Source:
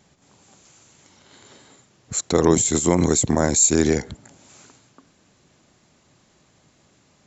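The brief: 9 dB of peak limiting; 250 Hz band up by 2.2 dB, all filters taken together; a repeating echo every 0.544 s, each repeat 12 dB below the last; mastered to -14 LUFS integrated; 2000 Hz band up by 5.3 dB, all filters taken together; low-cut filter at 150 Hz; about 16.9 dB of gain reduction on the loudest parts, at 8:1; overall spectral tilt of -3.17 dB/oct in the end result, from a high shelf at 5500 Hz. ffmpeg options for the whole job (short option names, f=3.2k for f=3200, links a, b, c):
-af "highpass=150,equalizer=f=250:t=o:g=3.5,equalizer=f=2k:t=o:g=5.5,highshelf=f=5.5k:g=7,acompressor=threshold=-26dB:ratio=8,alimiter=limit=-21.5dB:level=0:latency=1,aecho=1:1:544|1088|1632:0.251|0.0628|0.0157,volume=19.5dB"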